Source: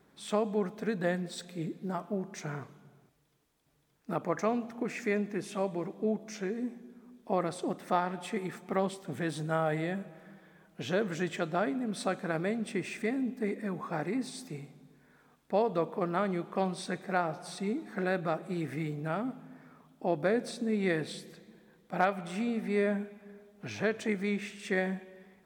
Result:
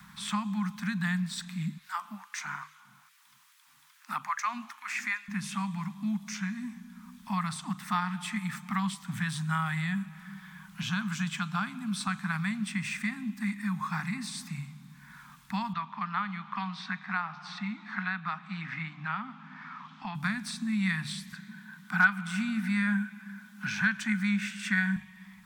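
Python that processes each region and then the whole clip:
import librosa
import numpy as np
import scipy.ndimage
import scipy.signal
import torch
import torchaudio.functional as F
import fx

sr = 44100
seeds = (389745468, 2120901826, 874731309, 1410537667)

y = fx.chain(x, sr, fx.peak_eq(hz=170.0, db=-15.0, octaves=0.63),
    fx.filter_lfo_highpass(shape='sine', hz=2.4, low_hz=220.0, high_hz=1800.0, q=1.1), at=(1.78, 5.28))
y = fx.chain(y, sr, fx.highpass(hz=120.0, slope=12),
    fx.peak_eq(hz=1900.0, db=-9.5, octaves=0.21), at=(10.82, 12.07))
y = fx.chain(y, sr, fx.bandpass_edges(low_hz=310.0, high_hz=5900.0),
    fx.air_absorb(metres=170.0),
    fx.band_squash(depth_pct=40), at=(15.73, 20.15))
y = fx.chain(y, sr, fx.highpass(hz=140.0, slope=24),
    fx.small_body(hz=(380.0, 1500.0), ring_ms=40, db=17), at=(21.32, 24.96))
y = scipy.signal.sosfilt(scipy.signal.ellip(3, 1.0, 60, [200.0, 1000.0], 'bandstop', fs=sr, output='sos'), y)
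y = fx.hum_notches(y, sr, base_hz=50, count=3)
y = fx.band_squash(y, sr, depth_pct=40)
y = F.gain(torch.from_numpy(y), 6.0).numpy()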